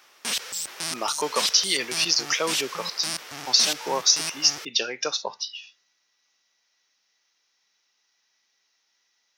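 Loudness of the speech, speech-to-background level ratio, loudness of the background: -23.5 LUFS, 6.0 dB, -29.5 LUFS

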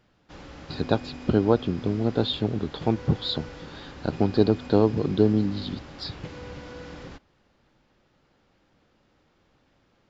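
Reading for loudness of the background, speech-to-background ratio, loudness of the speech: -41.0 LUFS, 16.0 dB, -25.0 LUFS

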